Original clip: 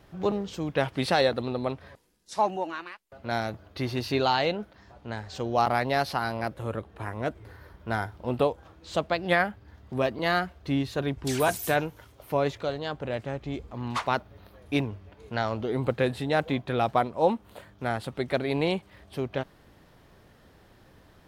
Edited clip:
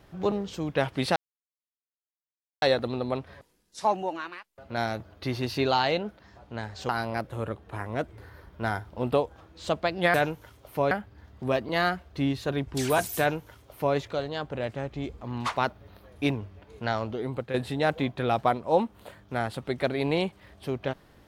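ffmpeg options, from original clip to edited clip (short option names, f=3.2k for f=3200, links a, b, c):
-filter_complex "[0:a]asplit=6[a][b][c][d][e][f];[a]atrim=end=1.16,asetpts=PTS-STARTPTS,afade=t=out:st=1.156:d=0.004:c=hsin,apad=pad_dur=1.46[g];[b]atrim=start=1.16:end=5.432,asetpts=PTS-STARTPTS,afade=t=in:d=0.004:c=hsin[h];[c]atrim=start=6.158:end=9.412[i];[d]atrim=start=11.688:end=12.462[j];[e]atrim=start=9.408:end=16.04,asetpts=PTS-STARTPTS,afade=t=out:st=6.022:d=0.61:silence=0.334965[k];[f]atrim=start=16.04,asetpts=PTS-STARTPTS,afade=t=in:d=0.004:c=hsin:silence=0.334965[l];[g][h]concat=n=2:v=0:a=1[m];[m][i]acrossfade=d=0.004:c1=hsin:c2=hsin[n];[n][j]acrossfade=d=0.004:c1=hsin:c2=hsin[o];[k][l]concat=n=2:v=0:a=1[p];[o][p]acrossfade=d=0.004:c1=hsin:c2=hsin"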